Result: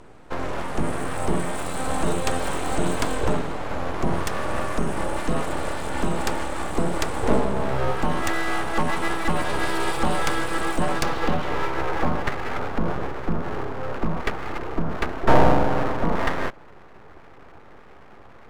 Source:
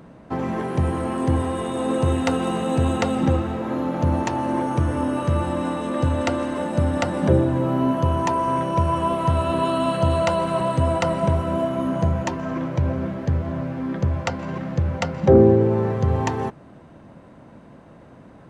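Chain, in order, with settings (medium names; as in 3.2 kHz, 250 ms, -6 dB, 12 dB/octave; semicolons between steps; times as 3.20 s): low-pass sweep 8.6 kHz -> 1.2 kHz, 10.82–11.91 s; full-wave rectifier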